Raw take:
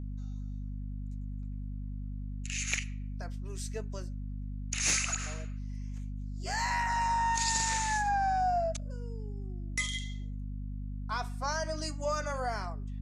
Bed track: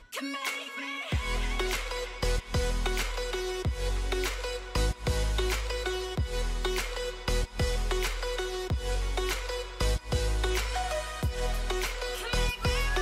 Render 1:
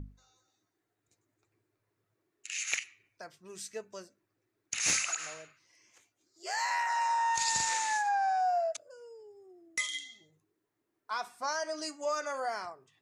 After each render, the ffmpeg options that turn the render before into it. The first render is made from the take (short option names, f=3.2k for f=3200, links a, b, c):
-af "bandreject=f=50:t=h:w=6,bandreject=f=100:t=h:w=6,bandreject=f=150:t=h:w=6,bandreject=f=200:t=h:w=6,bandreject=f=250:t=h:w=6"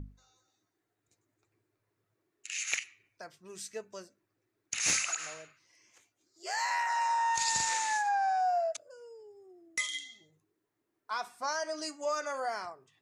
-af anull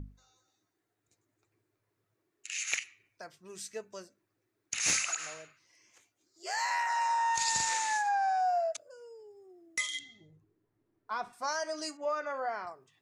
-filter_complex "[0:a]asettb=1/sr,asplit=3[a][b][c];[a]atrim=end=9.994[d];[b]atrim=start=9.99:end=11.33,asetpts=PTS-STARTPTS,afade=t=in:d=0.004:c=qsin,afade=t=out:st=1.336:d=0.004:c=qsin,aemphasis=mode=reproduction:type=riaa[e];[c]atrim=start=11.326[f];[d][e]acrossfade=d=0.004:c1=hsin:c2=qsin[g];[g][f]acrossfade=d=0.004:c1=qsin:c2=hsin,asettb=1/sr,asplit=3[h][i][j];[h]atrim=end=11.974[k];[i]atrim=start=11.97:end=12.67,asetpts=PTS-STARTPTS,afade=t=in:d=0.004:c=qsin,afade=t=out:st=0.696:d=0.004:c=qsin,lowpass=2.6k[l];[j]atrim=start=12.666[m];[k][l]acrossfade=d=0.004:c1=hsin:c2=qsin[n];[n][m]acrossfade=d=0.004:c1=qsin:c2=hsin"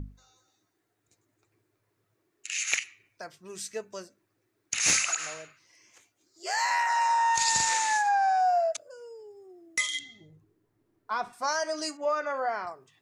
-af "volume=5dB"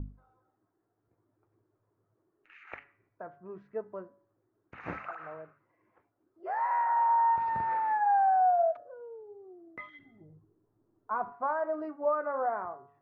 -af "lowpass=f=1.3k:w=0.5412,lowpass=f=1.3k:w=1.3066,bandreject=f=141.3:t=h:w=4,bandreject=f=282.6:t=h:w=4,bandreject=f=423.9:t=h:w=4,bandreject=f=565.2:t=h:w=4,bandreject=f=706.5:t=h:w=4,bandreject=f=847.8:t=h:w=4,bandreject=f=989.1:t=h:w=4,bandreject=f=1.1304k:t=h:w=4,bandreject=f=1.2717k:t=h:w=4,bandreject=f=1.413k:t=h:w=4,bandreject=f=1.5543k:t=h:w=4,bandreject=f=1.6956k:t=h:w=4,bandreject=f=1.8369k:t=h:w=4,bandreject=f=1.9782k:t=h:w=4"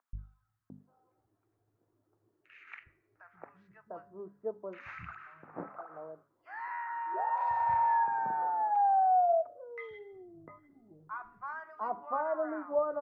-filter_complex "[0:a]acrossover=split=150|1200[a][b][c];[a]adelay=130[d];[b]adelay=700[e];[d][e][c]amix=inputs=3:normalize=0"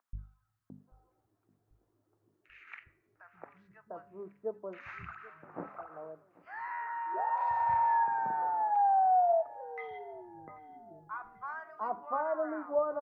-af "aecho=1:1:788|1576|2364:0.0841|0.0404|0.0194"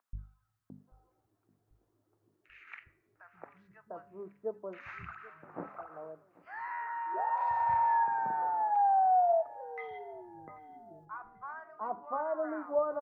-filter_complex "[0:a]asettb=1/sr,asplit=3[a][b][c];[a]atrim=end=11.054[d];[b]atrim=start=11.05:end=12.44,asetpts=PTS-STARTPTS,afade=t=in:d=0.004:c=qsin,afade=t=out:st=1.386:d=0.004:c=qsin,highshelf=f=2.2k:g=-12[e];[c]atrim=start=12.436[f];[d][e]acrossfade=d=0.004:c1=hsin:c2=qsin[g];[g][f]acrossfade=d=0.004:c1=qsin:c2=hsin"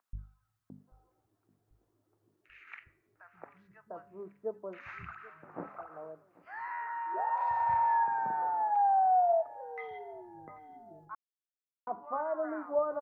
-filter_complex "[0:a]asplit=3[a][b][c];[a]atrim=end=11.15,asetpts=PTS-STARTPTS,afade=t=out:st=11.146:d=0.004:c=hsin[d];[b]atrim=start=11.15:end=11.87,asetpts=PTS-STARTPTS,volume=0[e];[c]atrim=start=11.87,asetpts=PTS-STARTPTS,afade=t=in:d=0.004:c=hsin[f];[d][e][f]concat=n=3:v=0:a=1"